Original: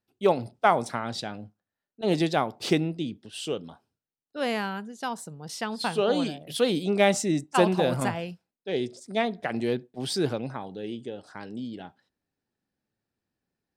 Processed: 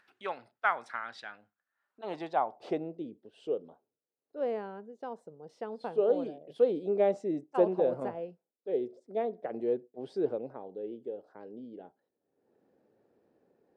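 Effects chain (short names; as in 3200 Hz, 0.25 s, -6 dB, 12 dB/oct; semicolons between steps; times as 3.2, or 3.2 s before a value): band-pass sweep 1600 Hz -> 470 Hz, 1.58–3.06; upward compressor, threshold -49 dBFS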